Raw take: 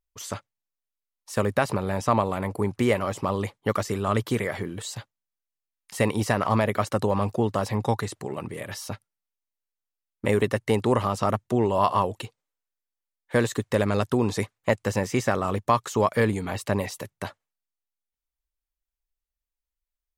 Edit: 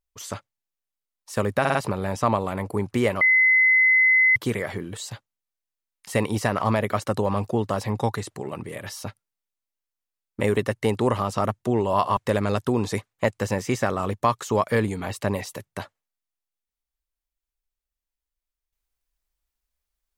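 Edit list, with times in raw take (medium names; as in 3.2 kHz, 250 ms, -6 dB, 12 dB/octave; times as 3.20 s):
1.60 s: stutter 0.05 s, 4 plays
3.06–4.21 s: bleep 2.04 kHz -14 dBFS
12.02–13.62 s: delete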